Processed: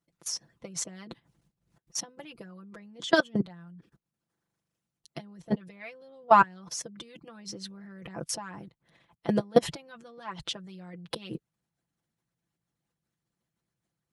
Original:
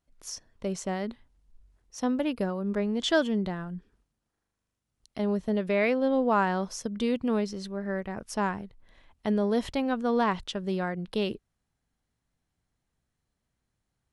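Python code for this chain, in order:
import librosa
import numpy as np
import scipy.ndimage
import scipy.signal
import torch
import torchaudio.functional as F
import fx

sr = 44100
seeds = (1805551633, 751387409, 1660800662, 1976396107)

y = fx.peak_eq(x, sr, hz=160.0, db=11.0, octaves=0.62)
y = fx.level_steps(y, sr, step_db=22)
y = y + 0.77 * np.pad(y, (int(5.9 * sr / 1000.0), 0))[:len(y)]
y = fx.rider(y, sr, range_db=4, speed_s=2.0)
y = fx.hpss(y, sr, part='harmonic', gain_db=-16)
y = scipy.signal.sosfilt(scipy.signal.butter(2, 93.0, 'highpass', fs=sr, output='sos'), y)
y = F.gain(torch.from_numpy(y), 7.0).numpy()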